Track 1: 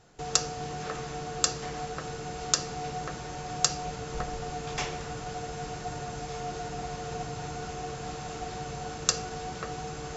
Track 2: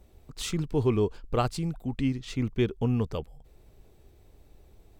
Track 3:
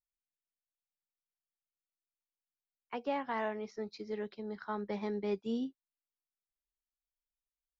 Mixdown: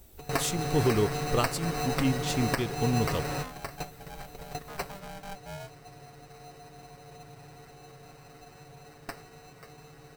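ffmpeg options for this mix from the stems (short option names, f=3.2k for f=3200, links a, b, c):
-filter_complex "[0:a]acrusher=samples=13:mix=1:aa=0.000001,acontrast=33,aecho=1:1:7.3:0.69,volume=-1dB[a];[1:a]aemphasis=mode=production:type=75kf,volume=0.5dB,asplit=2[b][c];[2:a]lowpass=1.7k,aeval=exprs='val(0)*sgn(sin(2*PI*390*n/s))':c=same,volume=-7dB[d];[c]apad=whole_len=448805[e];[a][e]sidechaingate=range=-19dB:threshold=-48dB:ratio=16:detection=peak[f];[f][b][d]amix=inputs=3:normalize=0,alimiter=limit=-14dB:level=0:latency=1:release=440"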